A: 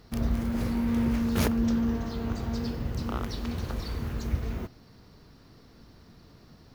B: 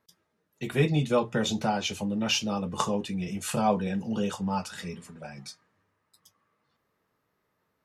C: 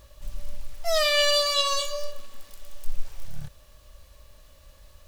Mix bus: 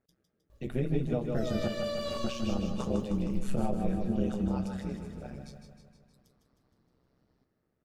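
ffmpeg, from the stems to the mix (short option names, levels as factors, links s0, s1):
-filter_complex "[0:a]lowpass=11000,lowshelf=f=350:g=-10.5,adelay=700,volume=0.2,asplit=2[s0][s1];[s1]volume=0.168[s2];[1:a]equalizer=f=980:t=o:w=0.33:g=-14.5,volume=0.668,asplit=3[s3][s4][s5];[s3]atrim=end=1.68,asetpts=PTS-STARTPTS,afade=t=out:st=1.676:d=0.004:c=hsin[s6];[s4]atrim=start=1.68:end=2.24,asetpts=PTS-STARTPTS,volume=0[s7];[s5]atrim=start=2.24,asetpts=PTS-STARTPTS,afade=t=in:d=0.004:c=hsin[s8];[s6][s7][s8]concat=n=3:v=0:a=1,asplit=2[s9][s10];[s10]volume=0.299[s11];[2:a]adelay=500,volume=0.178,asplit=2[s12][s13];[s13]volume=0.708[s14];[s0][s9]amix=inputs=2:normalize=0,tremolo=f=130:d=0.857,alimiter=limit=0.075:level=0:latency=1:release=161,volume=1[s15];[s2][s11][s14]amix=inputs=3:normalize=0,aecho=0:1:156|312|468|624|780|936|1092|1248|1404:1|0.59|0.348|0.205|0.121|0.0715|0.0422|0.0249|0.0147[s16];[s12][s15][s16]amix=inputs=3:normalize=0,tiltshelf=f=1100:g=7.5,alimiter=limit=0.126:level=0:latency=1:release=467"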